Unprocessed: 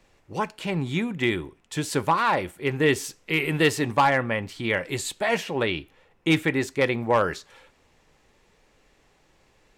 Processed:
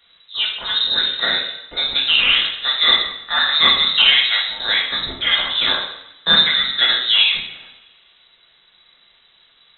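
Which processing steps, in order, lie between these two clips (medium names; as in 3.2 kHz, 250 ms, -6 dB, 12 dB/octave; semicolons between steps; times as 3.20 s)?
two-slope reverb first 0.74 s, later 2.2 s, from -25 dB, DRR -3.5 dB; frequency inversion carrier 3.9 kHz; trim +2 dB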